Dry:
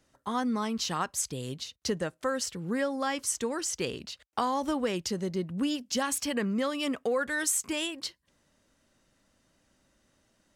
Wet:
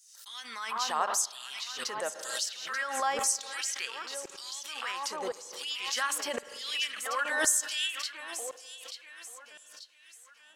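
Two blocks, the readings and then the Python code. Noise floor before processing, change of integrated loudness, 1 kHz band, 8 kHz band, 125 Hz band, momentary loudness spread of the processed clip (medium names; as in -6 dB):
-71 dBFS, -0.5 dB, +0.5 dB, +2.0 dB, under -20 dB, 17 LU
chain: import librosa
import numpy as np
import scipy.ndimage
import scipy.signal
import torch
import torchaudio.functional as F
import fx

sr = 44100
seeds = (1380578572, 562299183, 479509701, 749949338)

y = fx.echo_alternate(x, sr, ms=443, hz=2100.0, feedback_pct=63, wet_db=-5.0)
y = fx.filter_lfo_highpass(y, sr, shape='saw_down', hz=0.94, low_hz=570.0, high_hz=7400.0, q=1.9)
y = fx.rev_spring(y, sr, rt60_s=1.7, pass_ms=(46, 51), chirp_ms=55, drr_db=16.0)
y = fx.pre_swell(y, sr, db_per_s=55.0)
y = F.gain(torch.from_numpy(y), -2.0).numpy()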